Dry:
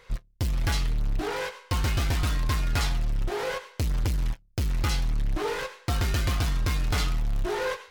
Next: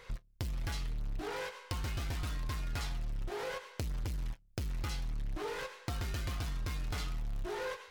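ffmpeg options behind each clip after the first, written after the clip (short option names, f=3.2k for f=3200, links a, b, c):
-af "acompressor=threshold=-39dB:ratio=3"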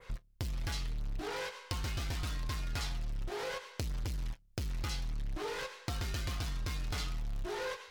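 -af "adynamicequalizer=threshold=0.00158:dfrequency=4800:dqfactor=0.78:tfrequency=4800:tqfactor=0.78:attack=5:release=100:ratio=0.375:range=2:mode=boostabove:tftype=bell"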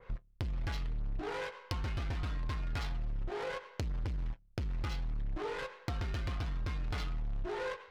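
-af "adynamicsmooth=sensitivity=7.5:basefreq=1.8k,volume=1dB"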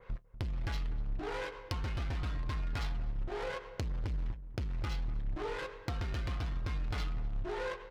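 -filter_complex "[0:a]asplit=2[a][b];[b]adelay=243,lowpass=f=850:p=1,volume=-12.5dB,asplit=2[c][d];[d]adelay=243,lowpass=f=850:p=1,volume=0.37,asplit=2[e][f];[f]adelay=243,lowpass=f=850:p=1,volume=0.37,asplit=2[g][h];[h]adelay=243,lowpass=f=850:p=1,volume=0.37[i];[a][c][e][g][i]amix=inputs=5:normalize=0"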